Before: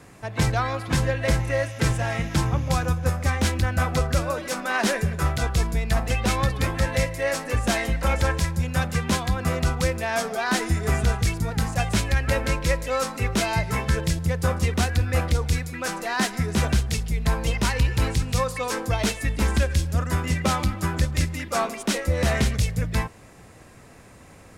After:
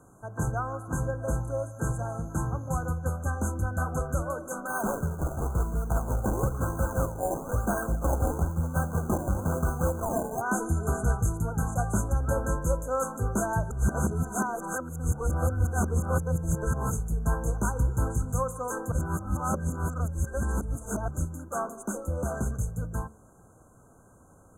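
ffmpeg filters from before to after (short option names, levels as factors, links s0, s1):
-filter_complex "[0:a]asplit=3[s0][s1][s2];[s0]afade=t=out:st=4.67:d=0.02[s3];[s1]acrusher=samples=23:mix=1:aa=0.000001:lfo=1:lforange=23:lforate=1,afade=t=in:st=4.67:d=0.02,afade=t=out:st=10.4:d=0.02[s4];[s2]afade=t=in:st=10.4:d=0.02[s5];[s3][s4][s5]amix=inputs=3:normalize=0,asplit=5[s6][s7][s8][s9][s10];[s6]atrim=end=13.712[s11];[s7]atrim=start=13.708:end=16.912,asetpts=PTS-STARTPTS,areverse[s12];[s8]atrim=start=16.908:end=18.922[s13];[s9]atrim=start=18.918:end=21.082,asetpts=PTS-STARTPTS,areverse[s14];[s10]atrim=start=21.078[s15];[s11][s12]acrossfade=d=0.004:c1=hsin:c2=hsin[s16];[s16][s13]acrossfade=d=0.004:c1=hsin:c2=hsin[s17];[s17][s14]acrossfade=d=0.004:c1=hsin:c2=hsin[s18];[s18][s15]acrossfade=d=0.004:c1=hsin:c2=hsin,afftfilt=real='re*(1-between(b*sr/4096,1600,6100))':imag='im*(1-between(b*sr/4096,1600,6100))':win_size=4096:overlap=0.75,dynaudnorm=f=370:g=31:m=1.5,bandreject=f=72.16:t=h:w=4,bandreject=f=144.32:t=h:w=4,bandreject=f=216.48:t=h:w=4,bandreject=f=288.64:t=h:w=4,bandreject=f=360.8:t=h:w=4,bandreject=f=432.96:t=h:w=4,bandreject=f=505.12:t=h:w=4,bandreject=f=577.28:t=h:w=4,volume=0.473"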